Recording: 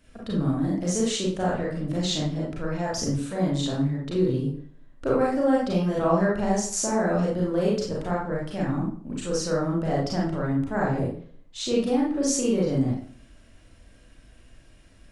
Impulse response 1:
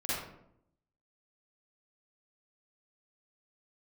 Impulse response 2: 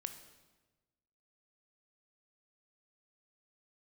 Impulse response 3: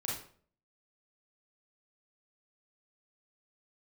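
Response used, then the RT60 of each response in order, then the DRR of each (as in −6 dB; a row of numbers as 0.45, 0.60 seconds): 3; 0.75, 1.2, 0.50 seconds; −11.0, 8.0, −5.0 decibels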